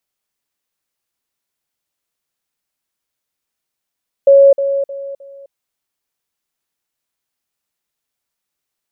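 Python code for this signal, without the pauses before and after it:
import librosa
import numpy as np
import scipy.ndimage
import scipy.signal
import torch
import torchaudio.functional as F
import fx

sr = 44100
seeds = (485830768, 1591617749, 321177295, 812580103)

y = fx.level_ladder(sr, hz=554.0, from_db=-3.5, step_db=-10.0, steps=4, dwell_s=0.26, gap_s=0.05)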